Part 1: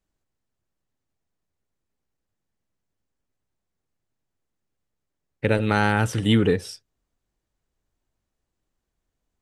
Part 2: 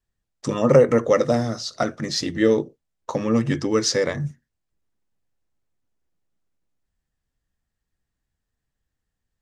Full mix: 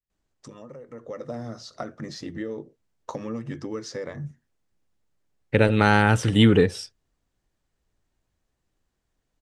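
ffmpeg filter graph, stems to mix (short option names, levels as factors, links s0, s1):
-filter_complex "[0:a]lowpass=8900,adelay=100,volume=1.33[s0];[1:a]alimiter=limit=0.335:level=0:latency=1:release=377,acompressor=threshold=0.0316:ratio=3,adynamicequalizer=threshold=0.00251:dfrequency=2200:dqfactor=0.7:tfrequency=2200:tqfactor=0.7:attack=5:release=100:ratio=0.375:range=4:mode=cutabove:tftype=highshelf,volume=0.794,afade=t=in:st=0.88:d=0.49:silence=0.281838[s1];[s0][s1]amix=inputs=2:normalize=0"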